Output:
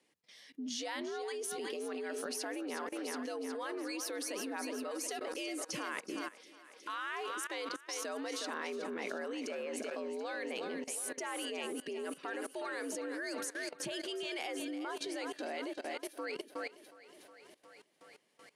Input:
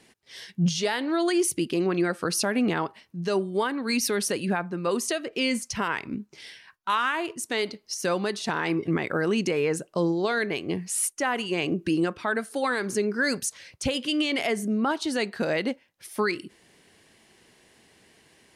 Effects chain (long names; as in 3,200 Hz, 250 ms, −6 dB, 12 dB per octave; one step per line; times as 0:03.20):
feedback echo with a high-pass in the loop 365 ms, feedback 64%, high-pass 160 Hz, level −10 dB
frequency shifter +80 Hz
output level in coarse steps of 18 dB
level −3.5 dB